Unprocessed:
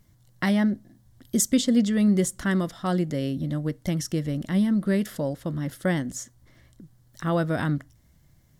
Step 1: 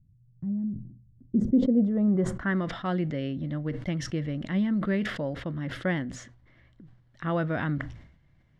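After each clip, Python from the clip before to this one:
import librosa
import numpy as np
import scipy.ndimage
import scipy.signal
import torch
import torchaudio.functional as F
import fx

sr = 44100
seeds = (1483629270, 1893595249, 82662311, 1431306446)

y = fx.filter_sweep_lowpass(x, sr, from_hz=140.0, to_hz=2500.0, start_s=0.94, end_s=2.71, q=1.5)
y = fx.sustainer(y, sr, db_per_s=79.0)
y = y * librosa.db_to_amplitude(-4.0)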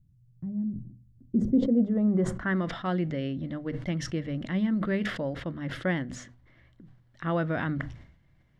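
y = fx.hum_notches(x, sr, base_hz=50, count=5)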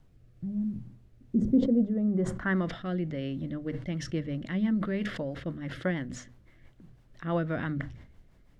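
y = fx.dmg_noise_colour(x, sr, seeds[0], colour='brown', level_db=-56.0)
y = fx.rotary_switch(y, sr, hz=1.1, then_hz=6.0, switch_at_s=3.24)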